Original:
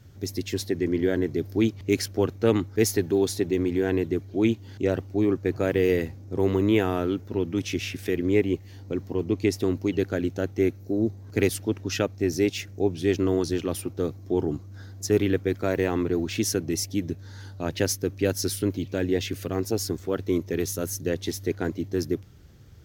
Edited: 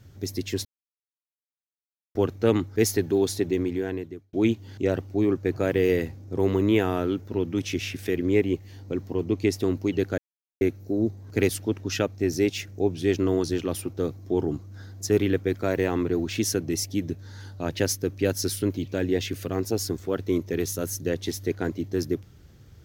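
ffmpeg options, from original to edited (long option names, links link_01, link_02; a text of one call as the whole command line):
ffmpeg -i in.wav -filter_complex "[0:a]asplit=6[link_01][link_02][link_03][link_04][link_05][link_06];[link_01]atrim=end=0.65,asetpts=PTS-STARTPTS,afade=type=out:start_time=0.646:duration=0.004:curve=hsin[link_07];[link_02]atrim=start=0.65:end=2.15,asetpts=PTS-STARTPTS,volume=0[link_08];[link_03]atrim=start=2.15:end=4.33,asetpts=PTS-STARTPTS,afade=type=in:duration=0.004:curve=hsin,afade=type=out:start_time=1.36:duration=0.82[link_09];[link_04]atrim=start=4.33:end=10.18,asetpts=PTS-STARTPTS,afade=type=in:duration=0.004:curve=hsin,afade=type=out:start_time=5.846:duration=0.004:curve=hsin[link_10];[link_05]atrim=start=10.18:end=10.61,asetpts=PTS-STARTPTS,volume=0[link_11];[link_06]atrim=start=10.61,asetpts=PTS-STARTPTS,afade=type=in:duration=0.004:curve=hsin[link_12];[link_07][link_08][link_09][link_10][link_11][link_12]concat=n=6:v=0:a=1" out.wav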